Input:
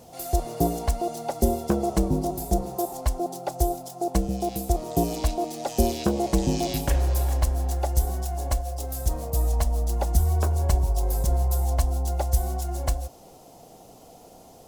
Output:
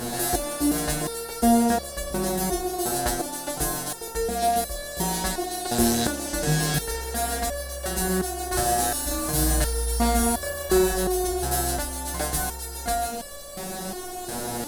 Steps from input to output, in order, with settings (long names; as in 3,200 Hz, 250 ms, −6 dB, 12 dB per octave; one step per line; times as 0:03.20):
compressor on every frequency bin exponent 0.4
graphic EQ with 15 bands 100 Hz −6 dB, 1,600 Hz +10 dB, 4,000 Hz +5 dB, 10,000 Hz +9 dB
0:08.49–0:10.94: flutter between parallel walls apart 6 metres, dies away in 0.71 s
step-sequenced resonator 2.8 Hz 120–570 Hz
level +8 dB